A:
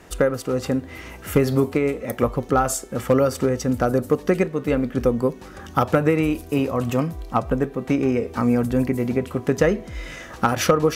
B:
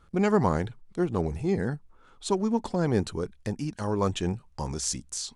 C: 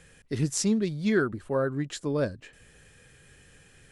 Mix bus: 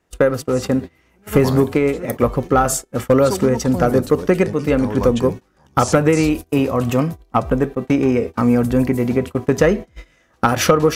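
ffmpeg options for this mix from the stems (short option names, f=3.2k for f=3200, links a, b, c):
-filter_complex "[0:a]volume=-1dB[a];[1:a]adelay=1000,volume=-4dB[b];[2:a]volume=-15.5dB,asplit=3[c][d][e];[c]atrim=end=1.01,asetpts=PTS-STARTPTS,afade=t=out:st=1.006:d=0.004:c=hsin[f];[d]atrim=start=1.01:end=1.93,asetpts=PTS-STARTPTS,volume=0[g];[e]atrim=start=1.93,asetpts=PTS-STARTPTS,afade=t=in:d=0.004:c=hsin[h];[f][g][h]concat=n=3:v=0:a=1,asplit=2[i][j];[j]apad=whole_len=280299[k];[b][k]sidechaincompress=threshold=-53dB:ratio=8:attack=9.4:release=713[l];[a][l][i]amix=inputs=3:normalize=0,agate=range=-25dB:threshold=-29dB:ratio=16:detection=peak,acontrast=47"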